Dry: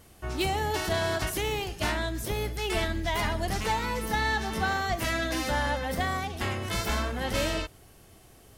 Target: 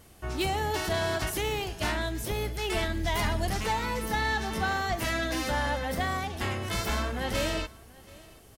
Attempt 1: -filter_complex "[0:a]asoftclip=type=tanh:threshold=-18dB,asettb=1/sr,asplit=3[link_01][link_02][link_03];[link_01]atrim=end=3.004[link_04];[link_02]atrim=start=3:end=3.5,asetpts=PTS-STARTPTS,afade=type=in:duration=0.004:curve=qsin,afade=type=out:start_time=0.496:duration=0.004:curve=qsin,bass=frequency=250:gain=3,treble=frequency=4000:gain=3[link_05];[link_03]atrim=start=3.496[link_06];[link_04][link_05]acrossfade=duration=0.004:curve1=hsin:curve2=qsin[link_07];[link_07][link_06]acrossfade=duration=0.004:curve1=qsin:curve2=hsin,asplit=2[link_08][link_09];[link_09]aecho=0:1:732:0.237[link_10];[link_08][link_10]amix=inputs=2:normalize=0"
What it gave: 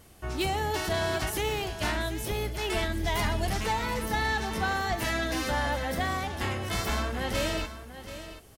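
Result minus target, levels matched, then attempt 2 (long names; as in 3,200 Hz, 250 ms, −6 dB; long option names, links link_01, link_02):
echo-to-direct +10.5 dB
-filter_complex "[0:a]asoftclip=type=tanh:threshold=-18dB,asettb=1/sr,asplit=3[link_01][link_02][link_03];[link_01]atrim=end=3.004[link_04];[link_02]atrim=start=3:end=3.5,asetpts=PTS-STARTPTS,afade=type=in:duration=0.004:curve=qsin,afade=type=out:start_time=0.496:duration=0.004:curve=qsin,bass=frequency=250:gain=3,treble=frequency=4000:gain=3[link_05];[link_03]atrim=start=3.496[link_06];[link_04][link_05]acrossfade=duration=0.004:curve1=hsin:curve2=qsin[link_07];[link_07][link_06]acrossfade=duration=0.004:curve1=qsin:curve2=hsin,asplit=2[link_08][link_09];[link_09]aecho=0:1:732:0.0708[link_10];[link_08][link_10]amix=inputs=2:normalize=0"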